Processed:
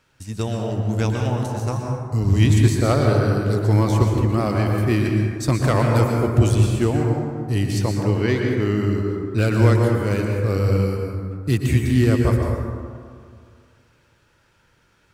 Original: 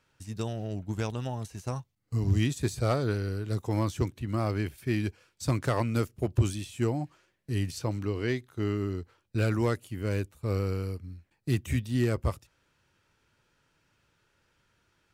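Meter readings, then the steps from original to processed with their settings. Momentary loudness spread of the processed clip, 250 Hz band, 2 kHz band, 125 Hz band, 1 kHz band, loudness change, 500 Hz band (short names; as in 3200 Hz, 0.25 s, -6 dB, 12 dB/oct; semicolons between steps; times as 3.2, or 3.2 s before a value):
9 LU, +11.0 dB, +10.0 dB, +12.0 dB, +10.5 dB, +11.0 dB, +11.0 dB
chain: plate-style reverb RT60 2.1 s, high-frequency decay 0.35×, pre-delay 0.105 s, DRR 0.5 dB; gain +7.5 dB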